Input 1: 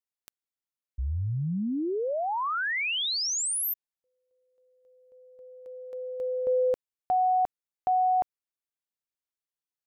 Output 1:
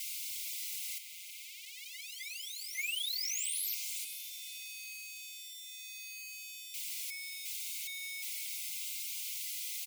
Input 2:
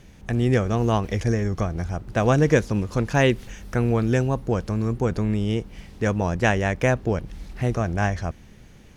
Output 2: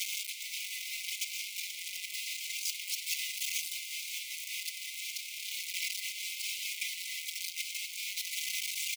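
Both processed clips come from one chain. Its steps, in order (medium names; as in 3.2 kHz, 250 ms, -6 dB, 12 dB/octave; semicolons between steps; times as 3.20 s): one-bit comparator; brick-wall FIR high-pass 2 kHz; on a send: echo that smears into a reverb 516 ms, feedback 43%, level -10 dB; on the sum: endless flanger 4.3 ms +0.79 Hz; trim -2.5 dB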